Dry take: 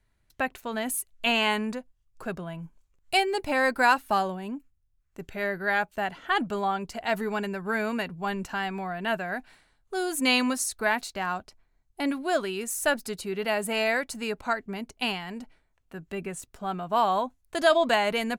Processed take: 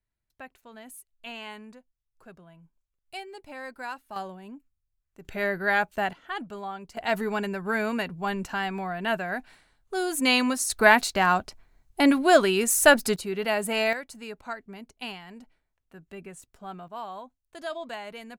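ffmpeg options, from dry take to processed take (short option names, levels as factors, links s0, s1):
-af "asetnsamples=n=441:p=0,asendcmd='4.16 volume volume -8.5dB;5.25 volume volume 2dB;6.13 volume volume -8.5dB;6.97 volume volume 1dB;10.7 volume volume 8.5dB;13.16 volume volume 1dB;13.93 volume volume -8dB;16.88 volume volume -14dB',volume=0.168"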